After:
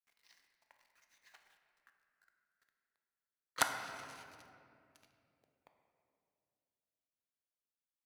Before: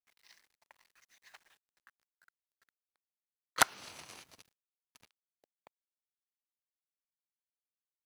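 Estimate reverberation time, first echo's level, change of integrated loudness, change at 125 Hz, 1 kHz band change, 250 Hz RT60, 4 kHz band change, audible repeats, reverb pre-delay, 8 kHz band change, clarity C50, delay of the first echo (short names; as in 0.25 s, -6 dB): 2.5 s, none, -5.5 dB, -4.0 dB, -4.5 dB, 3.4 s, -5.0 dB, none, 4 ms, -5.5 dB, 6.0 dB, none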